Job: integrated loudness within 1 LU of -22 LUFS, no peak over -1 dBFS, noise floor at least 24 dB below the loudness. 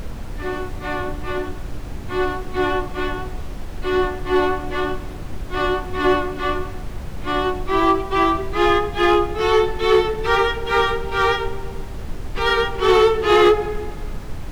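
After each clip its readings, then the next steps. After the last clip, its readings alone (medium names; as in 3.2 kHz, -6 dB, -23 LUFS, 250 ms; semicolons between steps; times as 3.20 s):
clipped samples 0.7%; clipping level -8.0 dBFS; noise floor -31 dBFS; noise floor target -44 dBFS; loudness -20.0 LUFS; peak level -8.0 dBFS; loudness target -22.0 LUFS
-> clip repair -8 dBFS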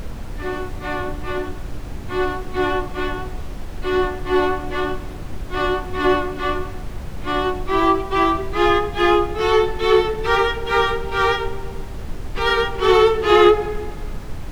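clipped samples 0.0%; noise floor -31 dBFS; noise floor target -44 dBFS
-> noise print and reduce 13 dB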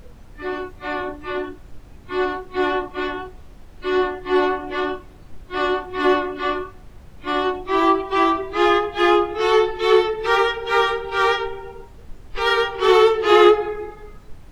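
noise floor -43 dBFS; noise floor target -44 dBFS
-> noise print and reduce 6 dB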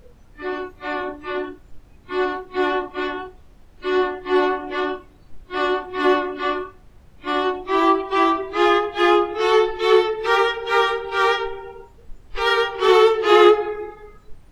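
noise floor -49 dBFS; loudness -20.0 LUFS; peak level -1.5 dBFS; loudness target -22.0 LUFS
-> trim -2 dB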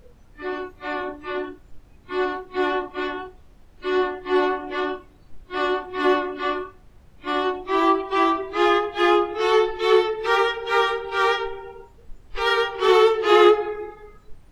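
loudness -22.0 LUFS; peak level -3.5 dBFS; noise floor -51 dBFS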